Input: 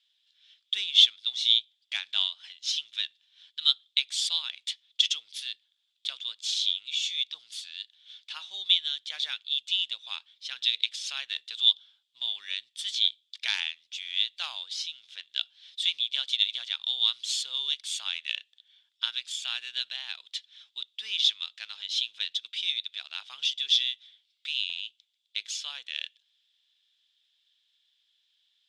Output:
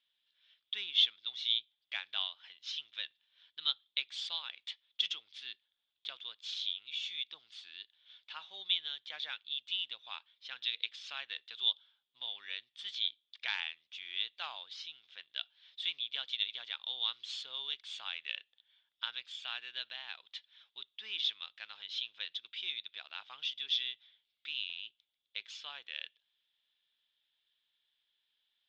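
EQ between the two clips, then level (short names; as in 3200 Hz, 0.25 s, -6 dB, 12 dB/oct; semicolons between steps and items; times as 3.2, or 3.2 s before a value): tape spacing loss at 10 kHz 36 dB; +3.0 dB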